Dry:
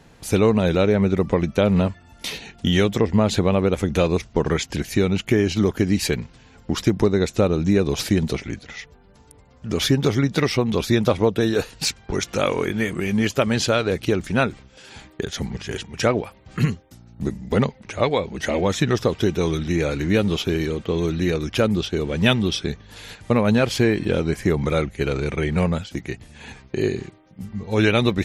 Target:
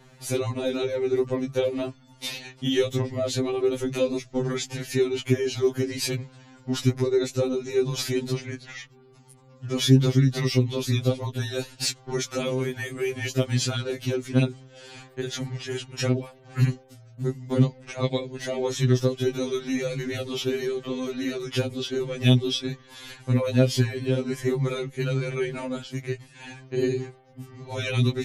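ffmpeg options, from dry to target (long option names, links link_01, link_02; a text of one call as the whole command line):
ffmpeg -i in.wav -filter_complex "[0:a]acrossover=split=500|3000[link_01][link_02][link_03];[link_02]acompressor=threshold=-33dB:ratio=6[link_04];[link_01][link_04][link_03]amix=inputs=3:normalize=0,afftfilt=real='re*2.45*eq(mod(b,6),0)':imag='im*2.45*eq(mod(b,6),0)':win_size=2048:overlap=0.75" out.wav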